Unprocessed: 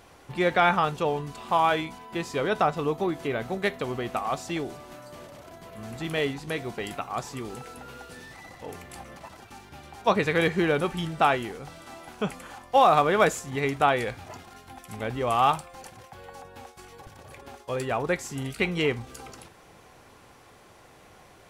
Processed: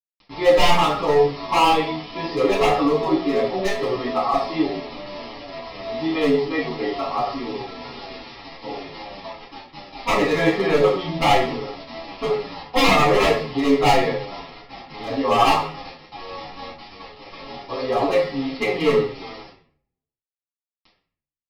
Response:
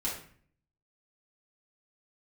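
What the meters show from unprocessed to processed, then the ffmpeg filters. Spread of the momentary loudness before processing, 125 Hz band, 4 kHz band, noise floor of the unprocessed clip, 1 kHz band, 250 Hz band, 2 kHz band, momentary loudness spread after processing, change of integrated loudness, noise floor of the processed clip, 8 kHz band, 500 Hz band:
22 LU, +2.5 dB, +9.0 dB, -53 dBFS, +4.5 dB, +8.0 dB, +4.0 dB, 20 LU, +6.0 dB, under -85 dBFS, +3.5 dB, +7.5 dB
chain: -filter_complex "[0:a]highpass=280,equalizer=f=2.6k:w=1.6:g=-9,aecho=1:1:7.2:0.88,aresample=11025,acrusher=bits=6:mix=0:aa=0.000001,aresample=44100,aeval=exprs='0.133*(abs(mod(val(0)/0.133+3,4)-2)-1)':c=same,asuperstop=centerf=1500:order=4:qfactor=5.5[a];[1:a]atrim=start_sample=2205[b];[a][b]afir=irnorm=-1:irlink=0,asplit=2[c][d];[d]adelay=8.5,afreqshift=-2.7[e];[c][e]amix=inputs=2:normalize=1,volume=6dB"

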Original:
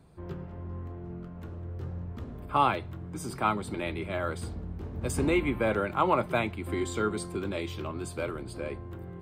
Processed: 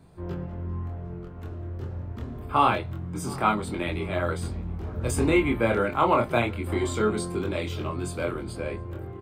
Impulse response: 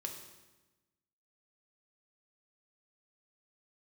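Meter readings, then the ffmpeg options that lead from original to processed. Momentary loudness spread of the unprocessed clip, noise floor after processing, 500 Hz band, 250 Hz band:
14 LU, -38 dBFS, +4.0 dB, +4.0 dB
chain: -filter_complex "[0:a]flanger=delay=22.5:depth=3.7:speed=0.26,asplit=2[a][b];[b]adelay=714,lowpass=f=1.3k:p=1,volume=-20dB,asplit=2[c][d];[d]adelay=714,lowpass=f=1.3k:p=1,volume=0.5,asplit=2[e][f];[f]adelay=714,lowpass=f=1.3k:p=1,volume=0.5,asplit=2[g][h];[h]adelay=714,lowpass=f=1.3k:p=1,volume=0.5[i];[c][e][g][i]amix=inputs=4:normalize=0[j];[a][j]amix=inputs=2:normalize=0,volume=7dB"

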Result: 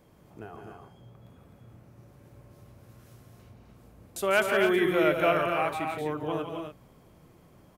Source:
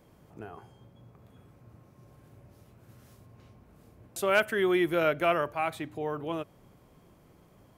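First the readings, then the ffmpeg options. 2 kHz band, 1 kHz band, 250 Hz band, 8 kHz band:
+2.0 dB, +2.0 dB, +2.0 dB, +2.0 dB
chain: -af "aecho=1:1:57|146|169|256|289:0.112|0.251|0.447|0.531|0.316"

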